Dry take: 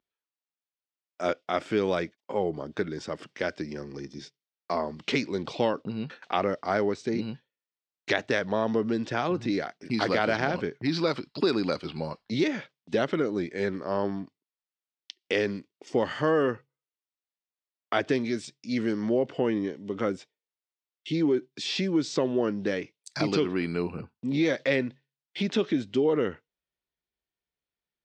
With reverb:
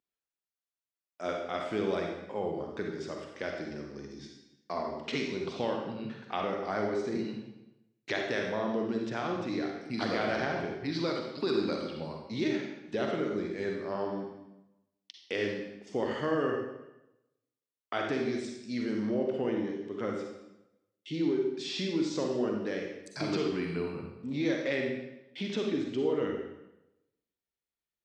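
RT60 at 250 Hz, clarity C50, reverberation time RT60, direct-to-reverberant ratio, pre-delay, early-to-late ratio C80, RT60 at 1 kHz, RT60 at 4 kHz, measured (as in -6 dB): 0.95 s, 2.0 dB, 0.90 s, 1.0 dB, 39 ms, 5.0 dB, 0.90 s, 0.80 s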